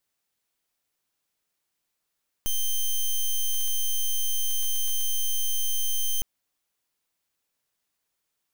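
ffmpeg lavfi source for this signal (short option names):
-f lavfi -i "aevalsrc='0.0631*(2*lt(mod(3120*t,1),0.07)-1)':d=3.76:s=44100"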